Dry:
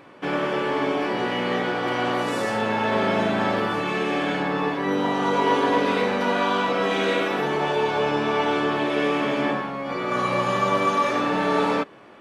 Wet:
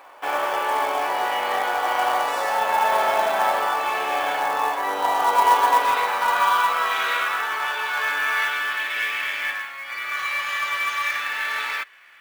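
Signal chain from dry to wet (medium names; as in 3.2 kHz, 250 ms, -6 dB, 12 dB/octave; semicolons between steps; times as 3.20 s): 7.95–8.48 s: doubling 20 ms -2.5 dB; high-pass sweep 790 Hz -> 1.9 kHz, 5.21–9.19 s; short-mantissa float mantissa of 2-bit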